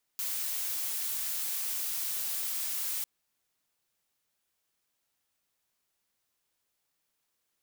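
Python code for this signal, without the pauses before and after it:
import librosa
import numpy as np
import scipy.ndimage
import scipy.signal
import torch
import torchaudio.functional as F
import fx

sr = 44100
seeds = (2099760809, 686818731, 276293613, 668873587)

y = fx.noise_colour(sr, seeds[0], length_s=2.85, colour='blue', level_db=-33.5)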